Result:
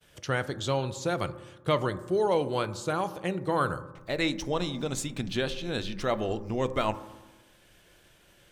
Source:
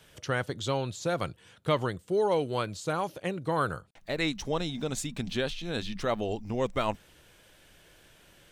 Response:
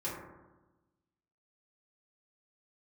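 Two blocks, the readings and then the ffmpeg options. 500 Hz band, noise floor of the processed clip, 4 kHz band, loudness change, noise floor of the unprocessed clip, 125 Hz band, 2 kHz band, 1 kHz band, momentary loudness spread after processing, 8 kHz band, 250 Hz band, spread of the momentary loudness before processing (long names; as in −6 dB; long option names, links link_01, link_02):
+1.0 dB, −60 dBFS, +1.0 dB, +1.0 dB, −59 dBFS, +1.0 dB, +1.0 dB, +1.5 dB, 5 LU, +1.0 dB, +1.5 dB, 6 LU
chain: -filter_complex "[0:a]agate=range=-33dB:threshold=-54dB:ratio=3:detection=peak,asplit=2[link_01][link_02];[1:a]atrim=start_sample=2205[link_03];[link_02][link_03]afir=irnorm=-1:irlink=0,volume=-14dB[link_04];[link_01][link_04]amix=inputs=2:normalize=0"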